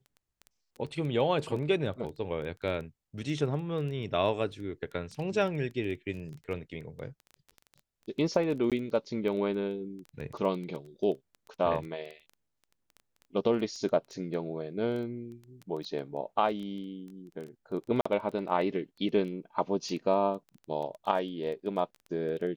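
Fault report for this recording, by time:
surface crackle 12 per second −36 dBFS
0:08.70–0:08.72: drop-out 17 ms
0:18.01–0:18.05: drop-out 45 ms

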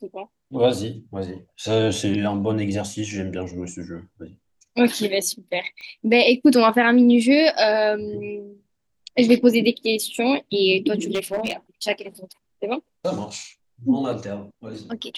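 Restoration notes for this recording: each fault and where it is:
0:05.81: click −27 dBFS
0:11.11–0:11.53: clipping −18.5 dBFS

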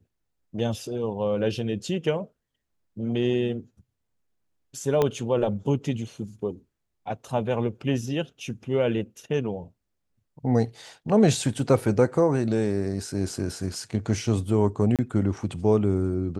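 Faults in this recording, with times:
0:05.02: click −10 dBFS
0:14.96–0:14.99: drop-out 27 ms

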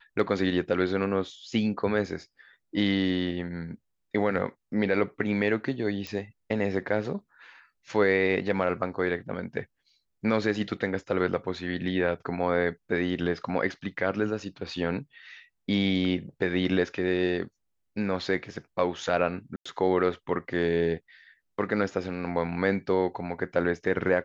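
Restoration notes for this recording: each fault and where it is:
0:06.07: click −20 dBFS
0:19.56–0:19.66: drop-out 95 ms

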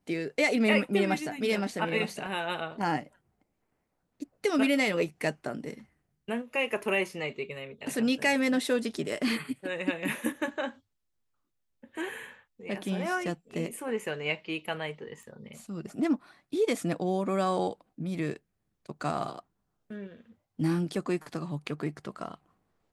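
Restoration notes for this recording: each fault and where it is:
0:15.23: click −36 dBFS

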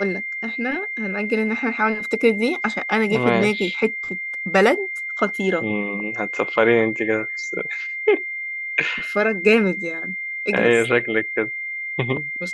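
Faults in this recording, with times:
whistle 2,100 Hz −26 dBFS

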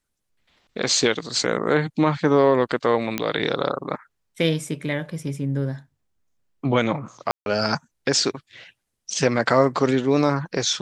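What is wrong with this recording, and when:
0:03.18: click −7 dBFS
0:07.31–0:07.46: drop-out 151 ms

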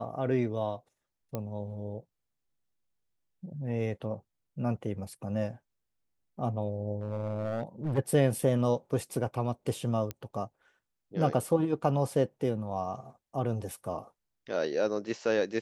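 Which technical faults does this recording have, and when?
0:01.35: click −20 dBFS
0:06.99–0:07.99: clipping −28 dBFS
0:10.11: click −20 dBFS

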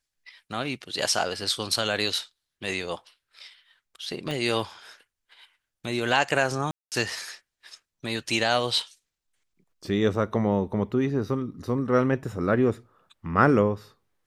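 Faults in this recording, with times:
0:04.31: click −18 dBFS
0:06.71–0:06.92: drop-out 208 ms

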